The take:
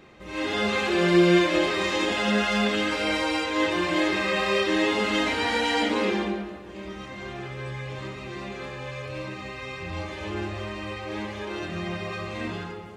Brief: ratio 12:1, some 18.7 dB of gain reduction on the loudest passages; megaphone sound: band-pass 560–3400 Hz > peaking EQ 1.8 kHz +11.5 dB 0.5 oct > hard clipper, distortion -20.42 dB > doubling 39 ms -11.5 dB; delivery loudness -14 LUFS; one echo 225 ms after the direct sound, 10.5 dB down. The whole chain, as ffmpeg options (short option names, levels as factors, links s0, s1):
-filter_complex "[0:a]acompressor=threshold=0.0224:ratio=12,highpass=560,lowpass=3400,equalizer=f=1800:t=o:w=0.5:g=11.5,aecho=1:1:225:0.299,asoftclip=type=hard:threshold=0.0355,asplit=2[s0][s1];[s1]adelay=39,volume=0.266[s2];[s0][s2]amix=inputs=2:normalize=0,volume=10.6"